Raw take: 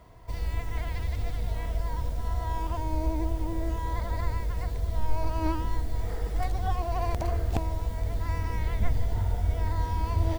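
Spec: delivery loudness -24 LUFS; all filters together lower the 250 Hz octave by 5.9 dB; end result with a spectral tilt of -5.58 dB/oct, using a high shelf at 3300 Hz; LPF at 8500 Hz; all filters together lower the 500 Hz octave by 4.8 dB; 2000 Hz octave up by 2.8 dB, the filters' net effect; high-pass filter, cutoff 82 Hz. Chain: HPF 82 Hz; LPF 8500 Hz; bell 250 Hz -6 dB; bell 500 Hz -6 dB; bell 2000 Hz +5 dB; high shelf 3300 Hz -5 dB; gain +12 dB

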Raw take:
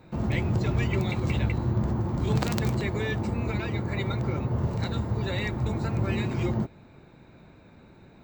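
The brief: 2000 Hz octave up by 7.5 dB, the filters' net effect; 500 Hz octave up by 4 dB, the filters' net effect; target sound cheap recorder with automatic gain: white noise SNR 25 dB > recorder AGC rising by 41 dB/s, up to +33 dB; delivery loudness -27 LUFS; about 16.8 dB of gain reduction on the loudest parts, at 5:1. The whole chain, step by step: bell 500 Hz +5 dB; bell 2000 Hz +8.5 dB; compressor 5:1, threshold -40 dBFS; white noise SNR 25 dB; recorder AGC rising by 41 dB/s, up to +33 dB; gain +7 dB

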